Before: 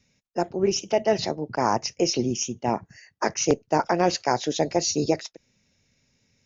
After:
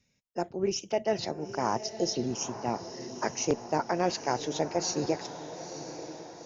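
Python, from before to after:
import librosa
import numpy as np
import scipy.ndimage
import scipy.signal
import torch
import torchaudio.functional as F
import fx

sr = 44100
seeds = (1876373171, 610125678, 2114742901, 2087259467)

y = fx.spec_erase(x, sr, start_s=1.85, length_s=0.3, low_hz=810.0, high_hz=3000.0)
y = fx.echo_diffused(y, sr, ms=930, feedback_pct=50, wet_db=-11)
y = y * 10.0 ** (-6.5 / 20.0)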